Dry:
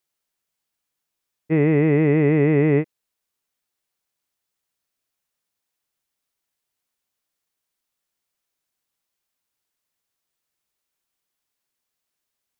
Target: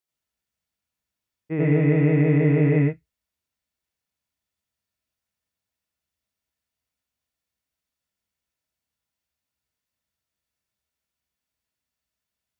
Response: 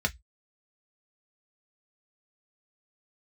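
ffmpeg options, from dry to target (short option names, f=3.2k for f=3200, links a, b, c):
-filter_complex "[0:a]asplit=2[a][b];[1:a]atrim=start_sample=2205,lowshelf=f=330:g=5,adelay=84[c];[b][c]afir=irnorm=-1:irlink=0,volume=-5.5dB[d];[a][d]amix=inputs=2:normalize=0,volume=-8dB"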